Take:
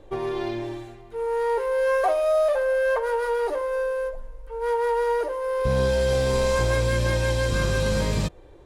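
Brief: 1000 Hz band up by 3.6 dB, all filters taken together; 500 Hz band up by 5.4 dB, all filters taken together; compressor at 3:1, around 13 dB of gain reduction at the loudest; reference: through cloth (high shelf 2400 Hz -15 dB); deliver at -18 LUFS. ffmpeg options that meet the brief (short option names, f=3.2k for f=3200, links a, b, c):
-af "equalizer=f=500:t=o:g=5.5,equalizer=f=1k:t=o:g=5,acompressor=threshold=-32dB:ratio=3,highshelf=f=2.4k:g=-15,volume=13.5dB"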